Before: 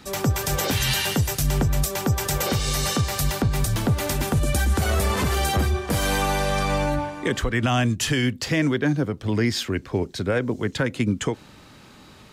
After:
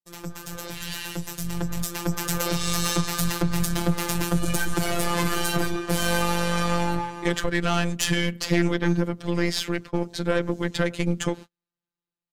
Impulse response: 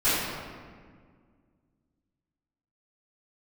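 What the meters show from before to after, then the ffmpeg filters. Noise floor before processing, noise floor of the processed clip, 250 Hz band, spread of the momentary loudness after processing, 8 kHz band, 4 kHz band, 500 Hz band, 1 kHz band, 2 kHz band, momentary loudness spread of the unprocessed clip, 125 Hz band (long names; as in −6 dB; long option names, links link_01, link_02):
−48 dBFS, below −85 dBFS, −1.0 dB, 8 LU, −2.0 dB, −2.0 dB, −2.0 dB, −2.0 dB, −1.5 dB, 4 LU, −4.5 dB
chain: -filter_complex "[0:a]asplit=2[link_01][link_02];[link_02]adelay=104,lowpass=frequency=1000:poles=1,volume=-22.5dB,asplit=2[link_03][link_04];[link_04]adelay=104,lowpass=frequency=1000:poles=1,volume=0.51,asplit=2[link_05][link_06];[link_06]adelay=104,lowpass=frequency=1000:poles=1,volume=0.51[link_07];[link_03][link_05][link_07]amix=inputs=3:normalize=0[link_08];[link_01][link_08]amix=inputs=2:normalize=0,aeval=exprs='(tanh(7.08*val(0)+0.6)-tanh(0.6))/7.08':channel_layout=same,agate=range=-44dB:threshold=-38dB:ratio=16:detection=peak,dynaudnorm=framelen=740:gausssize=5:maxgain=15dB,afftfilt=real='hypot(re,im)*cos(PI*b)':imag='0':win_size=1024:overlap=0.75,volume=-6dB"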